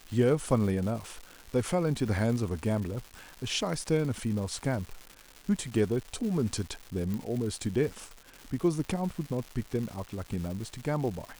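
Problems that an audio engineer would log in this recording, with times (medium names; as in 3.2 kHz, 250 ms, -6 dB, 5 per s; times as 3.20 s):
crackle 380 per s -37 dBFS
7.14 s: pop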